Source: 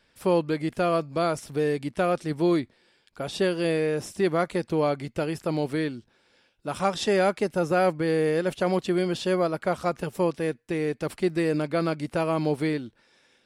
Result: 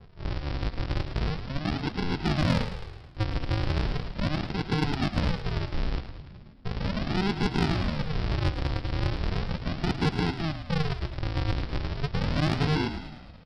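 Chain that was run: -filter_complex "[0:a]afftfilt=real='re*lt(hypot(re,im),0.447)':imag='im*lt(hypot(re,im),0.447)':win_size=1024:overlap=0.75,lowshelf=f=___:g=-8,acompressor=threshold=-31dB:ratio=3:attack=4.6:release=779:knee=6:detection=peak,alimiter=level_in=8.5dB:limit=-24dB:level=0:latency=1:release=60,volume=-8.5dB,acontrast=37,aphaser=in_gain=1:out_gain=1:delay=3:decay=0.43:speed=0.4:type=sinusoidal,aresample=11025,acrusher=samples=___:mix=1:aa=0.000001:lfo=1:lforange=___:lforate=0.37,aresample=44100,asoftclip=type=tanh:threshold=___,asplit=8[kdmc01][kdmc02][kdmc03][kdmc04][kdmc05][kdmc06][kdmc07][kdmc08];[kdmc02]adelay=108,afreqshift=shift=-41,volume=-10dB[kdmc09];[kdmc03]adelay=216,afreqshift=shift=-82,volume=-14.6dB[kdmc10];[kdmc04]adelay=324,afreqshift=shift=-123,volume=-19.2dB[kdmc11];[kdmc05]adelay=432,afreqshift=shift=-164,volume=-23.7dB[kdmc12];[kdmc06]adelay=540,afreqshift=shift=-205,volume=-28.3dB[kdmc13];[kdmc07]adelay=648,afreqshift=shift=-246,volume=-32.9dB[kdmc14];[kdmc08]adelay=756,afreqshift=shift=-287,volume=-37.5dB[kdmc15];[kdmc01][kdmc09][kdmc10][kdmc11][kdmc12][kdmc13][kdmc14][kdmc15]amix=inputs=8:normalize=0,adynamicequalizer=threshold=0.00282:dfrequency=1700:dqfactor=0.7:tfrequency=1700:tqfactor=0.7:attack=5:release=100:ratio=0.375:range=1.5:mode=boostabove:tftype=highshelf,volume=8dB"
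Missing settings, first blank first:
110, 35, 35, -24.5dB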